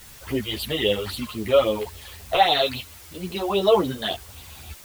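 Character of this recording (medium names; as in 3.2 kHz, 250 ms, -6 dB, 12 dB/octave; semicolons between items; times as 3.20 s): phasing stages 8, 3.7 Hz, lowest notch 230–1800 Hz; a quantiser's noise floor 8-bit, dither triangular; a shimmering, thickened sound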